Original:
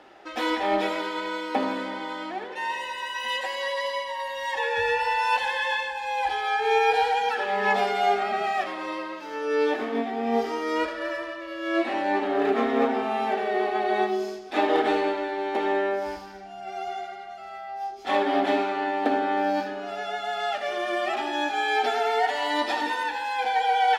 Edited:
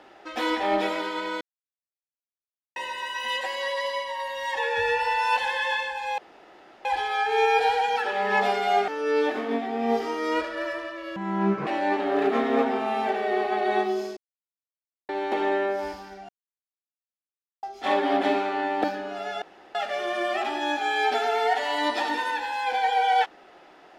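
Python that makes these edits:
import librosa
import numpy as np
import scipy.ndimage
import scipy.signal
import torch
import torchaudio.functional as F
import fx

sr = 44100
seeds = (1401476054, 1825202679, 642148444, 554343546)

y = fx.edit(x, sr, fx.silence(start_s=1.41, length_s=1.35),
    fx.insert_room_tone(at_s=6.18, length_s=0.67),
    fx.cut(start_s=8.21, length_s=1.11),
    fx.speed_span(start_s=11.6, length_s=0.3, speed=0.59),
    fx.silence(start_s=14.4, length_s=0.92),
    fx.silence(start_s=16.52, length_s=1.34),
    fx.cut(start_s=19.07, length_s=0.49),
    fx.room_tone_fill(start_s=20.14, length_s=0.33), tone=tone)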